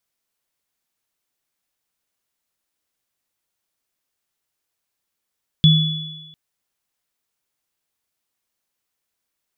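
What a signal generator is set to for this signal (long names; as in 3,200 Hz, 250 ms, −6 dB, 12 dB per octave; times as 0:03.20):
inharmonic partials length 0.70 s, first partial 157 Hz, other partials 3,420 Hz, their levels −5 dB, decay 1.01 s, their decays 1.33 s, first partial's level −7.5 dB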